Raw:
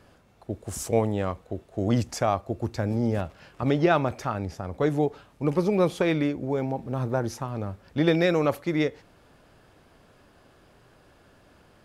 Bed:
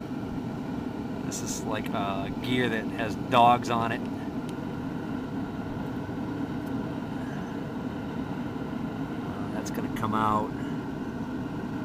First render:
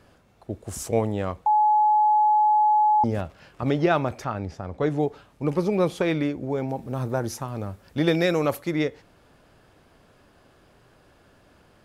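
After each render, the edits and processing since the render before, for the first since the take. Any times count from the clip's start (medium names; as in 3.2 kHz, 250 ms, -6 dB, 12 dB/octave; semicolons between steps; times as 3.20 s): 1.46–3.04 s: bleep 849 Hz -15.5 dBFS; 4.24–4.99 s: distance through air 53 m; 6.69–8.71 s: treble shelf 7.2 kHz +10.5 dB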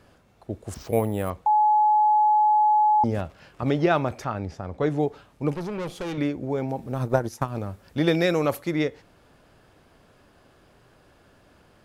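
0.74–1.30 s: careless resampling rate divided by 4×, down filtered, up hold; 5.54–6.18 s: valve stage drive 28 dB, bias 0.6; 6.93–7.59 s: transient shaper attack +10 dB, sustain -9 dB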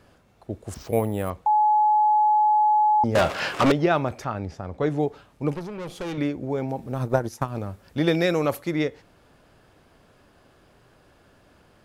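3.15–3.72 s: overdrive pedal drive 32 dB, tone 6.3 kHz, clips at -10 dBFS; 5.59–6.01 s: compression 2.5:1, threshold -33 dBFS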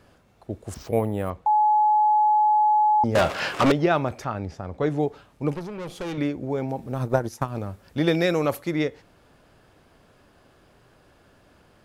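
0.89–1.48 s: treble shelf 4.1 kHz -8 dB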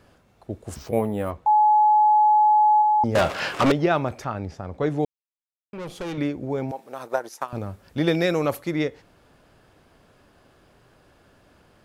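0.68–2.82 s: doubling 14 ms -8.5 dB; 5.05–5.73 s: mute; 6.71–7.53 s: high-pass 550 Hz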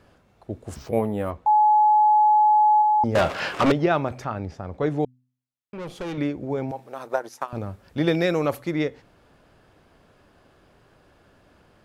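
treble shelf 5.4 kHz -5 dB; de-hum 126.6 Hz, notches 2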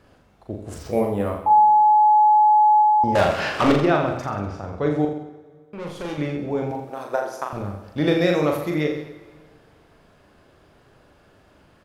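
reverse bouncing-ball echo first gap 40 ms, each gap 1.1×, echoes 5; plate-style reverb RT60 1.9 s, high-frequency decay 0.95×, DRR 14.5 dB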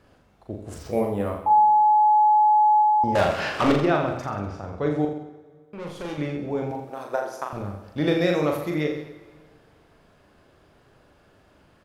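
trim -2.5 dB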